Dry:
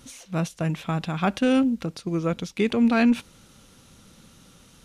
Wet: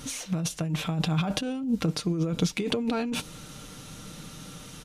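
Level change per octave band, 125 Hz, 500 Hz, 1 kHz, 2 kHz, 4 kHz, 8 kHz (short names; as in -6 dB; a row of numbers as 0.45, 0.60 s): +0.5, -5.5, -6.5, -6.0, +3.5, +7.0 dB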